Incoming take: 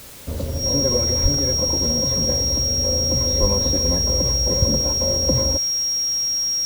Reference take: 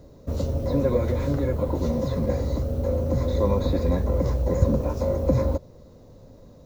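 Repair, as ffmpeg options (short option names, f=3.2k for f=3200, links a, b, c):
-filter_complex "[0:a]bandreject=f=5.6k:w=30,asplit=3[a][b][c];[a]afade=t=out:st=1.22:d=0.02[d];[b]highpass=f=140:w=0.5412,highpass=f=140:w=1.3066,afade=t=in:st=1.22:d=0.02,afade=t=out:st=1.34:d=0.02[e];[c]afade=t=in:st=1.34:d=0.02[f];[d][e][f]amix=inputs=3:normalize=0,asplit=3[g][h][i];[g]afade=t=out:st=3.4:d=0.02[j];[h]highpass=f=140:w=0.5412,highpass=f=140:w=1.3066,afade=t=in:st=3.4:d=0.02,afade=t=out:st=3.52:d=0.02[k];[i]afade=t=in:st=3.52:d=0.02[l];[j][k][l]amix=inputs=3:normalize=0,afwtdn=0.0089"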